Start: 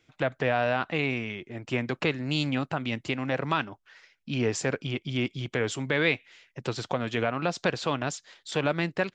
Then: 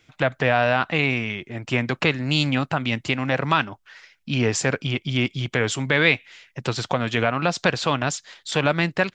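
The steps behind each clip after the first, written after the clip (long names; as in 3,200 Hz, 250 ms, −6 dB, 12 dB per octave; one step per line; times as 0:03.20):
parametric band 380 Hz −4.5 dB 1.5 octaves
level +8 dB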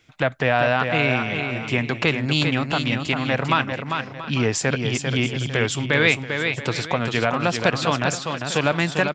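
multi-tap delay 397/682/847 ms −6/−15.5/−16 dB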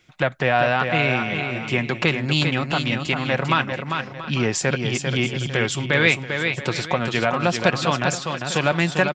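comb filter 5.5 ms, depth 30%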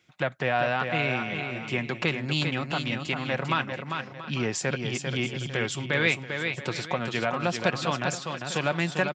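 high-pass filter 86 Hz
level −6.5 dB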